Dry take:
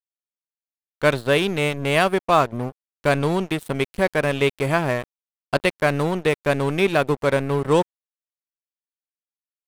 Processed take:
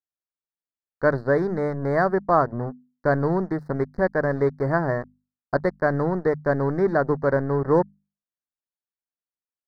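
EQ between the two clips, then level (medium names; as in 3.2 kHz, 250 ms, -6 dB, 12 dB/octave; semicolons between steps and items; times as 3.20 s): elliptic band-stop 1.8–4.6 kHz, stop band 70 dB; distance through air 300 m; hum notches 50/100/150/200/250 Hz; 0.0 dB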